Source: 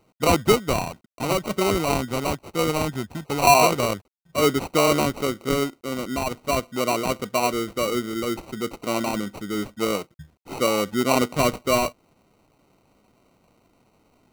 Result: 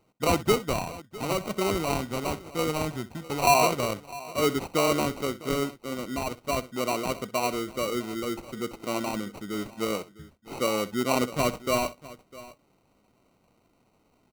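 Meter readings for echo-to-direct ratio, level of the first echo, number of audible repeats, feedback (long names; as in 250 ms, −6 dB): −15.0 dB, −17.0 dB, 2, repeats not evenly spaced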